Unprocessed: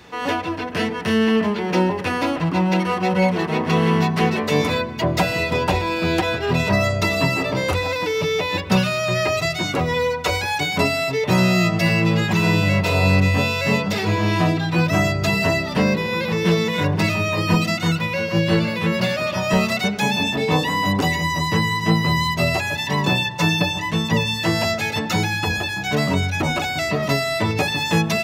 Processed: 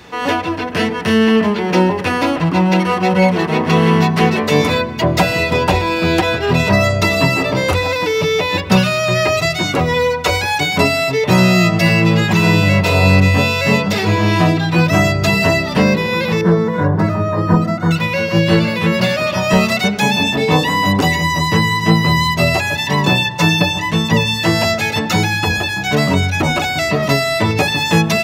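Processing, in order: 16.41–17.91 EQ curve 1600 Hz 0 dB, 2600 Hz -22 dB, 4100 Hz -17 dB; gain +5.5 dB

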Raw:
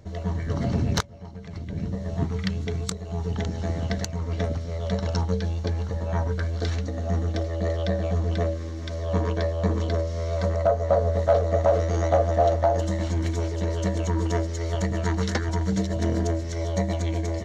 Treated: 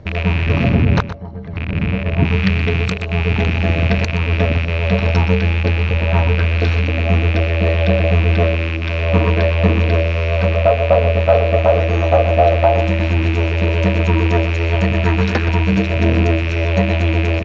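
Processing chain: rattling part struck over -31 dBFS, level -19 dBFS; 0.69–2.24 high shelf 3400 Hz -11.5 dB; in parallel at +3 dB: vocal rider 2 s; on the sum: air absorption 210 m; echo 0.122 s -12.5 dB; gain +2 dB

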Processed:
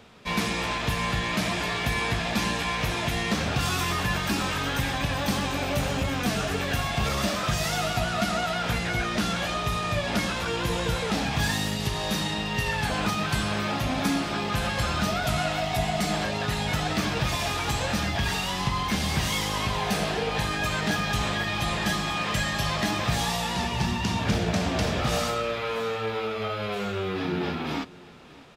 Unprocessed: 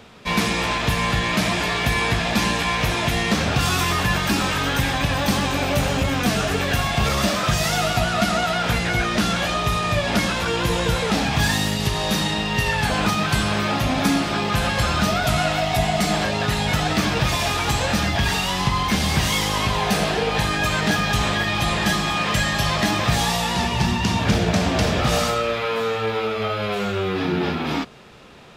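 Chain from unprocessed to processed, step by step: echo 0.604 s -21 dB; gain -6 dB

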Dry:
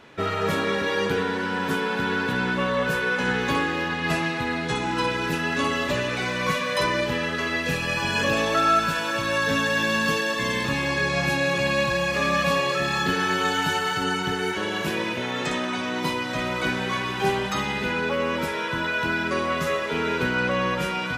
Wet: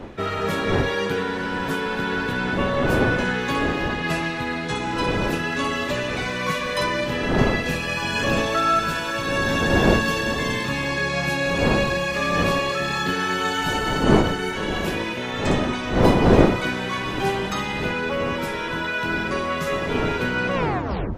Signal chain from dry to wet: tape stop at the end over 0.63 s; wind noise 430 Hz -26 dBFS

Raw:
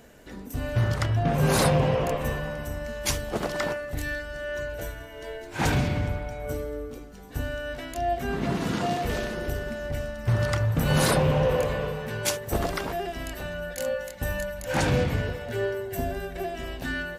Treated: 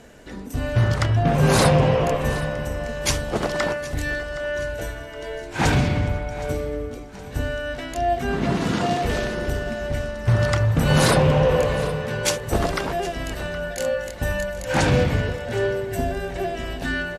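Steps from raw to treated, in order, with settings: LPF 10000 Hz 12 dB/oct; feedback echo 0.768 s, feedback 45%, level -17 dB; gain +5 dB

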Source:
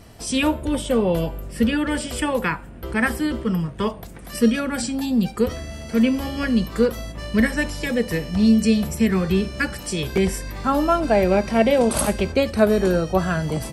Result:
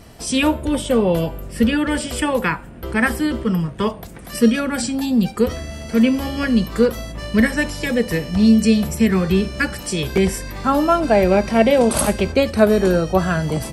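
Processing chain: de-hum 50.91 Hz, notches 2; gain +3 dB

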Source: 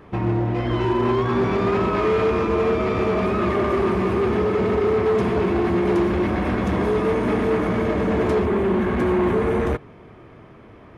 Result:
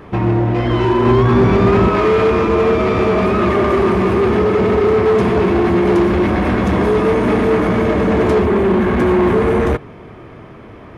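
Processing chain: 1.06–1.89 low shelf 180 Hz +9 dB; in parallel at -6 dB: soft clip -26.5 dBFS, distortion -8 dB; on the sum: gain +5 dB

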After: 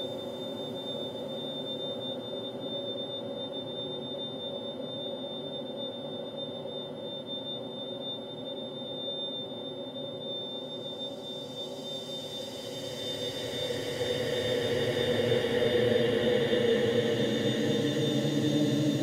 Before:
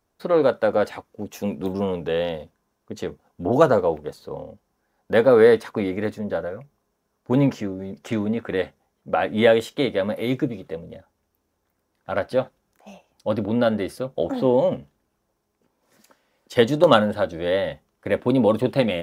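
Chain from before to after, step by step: limiter -11.5 dBFS, peak gain reduction 10 dB; swelling echo 82 ms, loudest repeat 8, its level -15.5 dB; whine 3600 Hz -35 dBFS; Paulstretch 29×, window 0.25 s, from 16.05; gain -4 dB

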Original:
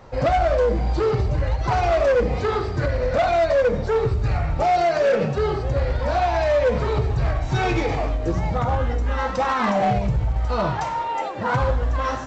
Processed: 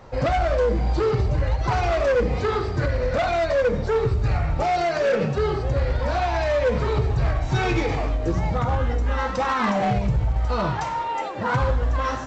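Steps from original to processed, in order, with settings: dynamic EQ 670 Hz, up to -4 dB, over -30 dBFS, Q 2

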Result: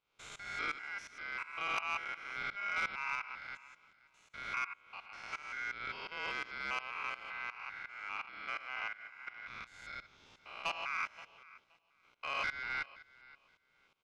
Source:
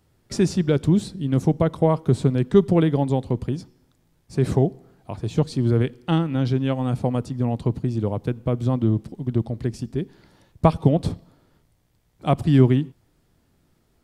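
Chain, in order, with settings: stepped spectrum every 0.2 s; 9.47–10.84 tilt shelf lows -4 dB, about 1200 Hz; in parallel at -1 dB: compressor, threshold -31 dBFS, peak gain reduction 16 dB; on the sum: tremolo saw up 2.8 Hz, depth 90%; BPF 580–3000 Hz; ring modulator 1800 Hz; feedback echo 0.524 s, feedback 19%, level -21.5 dB; soft clip -26.5 dBFS, distortion -18 dB; gain +1 dB

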